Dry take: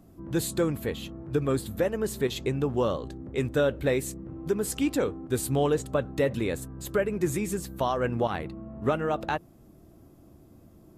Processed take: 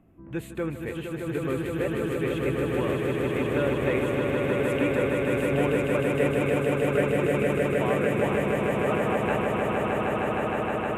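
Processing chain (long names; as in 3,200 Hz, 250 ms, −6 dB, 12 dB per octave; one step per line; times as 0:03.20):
high shelf with overshoot 3,400 Hz −10.5 dB, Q 3
echo that builds up and dies away 155 ms, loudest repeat 8, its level −4 dB
level −5 dB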